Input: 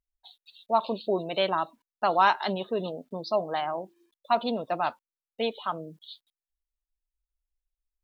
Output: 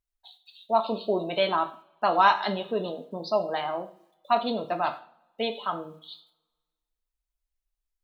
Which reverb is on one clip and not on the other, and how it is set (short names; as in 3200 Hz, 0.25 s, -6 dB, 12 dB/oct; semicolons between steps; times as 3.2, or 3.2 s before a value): two-slope reverb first 0.43 s, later 1.5 s, from -27 dB, DRR 5 dB